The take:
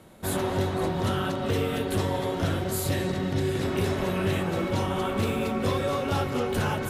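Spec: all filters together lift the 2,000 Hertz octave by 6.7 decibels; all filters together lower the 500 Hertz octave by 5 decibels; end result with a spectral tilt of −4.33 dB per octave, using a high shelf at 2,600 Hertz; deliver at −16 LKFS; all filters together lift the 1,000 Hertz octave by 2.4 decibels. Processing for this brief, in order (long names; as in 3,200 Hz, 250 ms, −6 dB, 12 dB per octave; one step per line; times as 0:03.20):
parametric band 500 Hz −8 dB
parametric band 1,000 Hz +3 dB
parametric band 2,000 Hz +5 dB
high-shelf EQ 2,600 Hz +7 dB
level +10.5 dB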